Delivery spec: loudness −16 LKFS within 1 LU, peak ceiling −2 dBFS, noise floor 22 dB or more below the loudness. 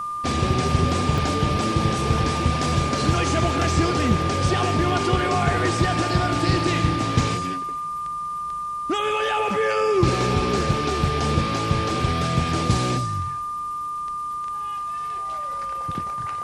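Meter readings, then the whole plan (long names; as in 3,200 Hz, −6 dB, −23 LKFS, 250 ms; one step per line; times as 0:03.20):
number of dropouts 2; longest dropout 1.5 ms; interfering tone 1,200 Hz; level of the tone −26 dBFS; integrated loudness −22.5 LKFS; sample peak −4.5 dBFS; target loudness −16.0 LKFS
→ repair the gap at 0:01.18/0:10.61, 1.5 ms
notch filter 1,200 Hz, Q 30
level +6.5 dB
brickwall limiter −2 dBFS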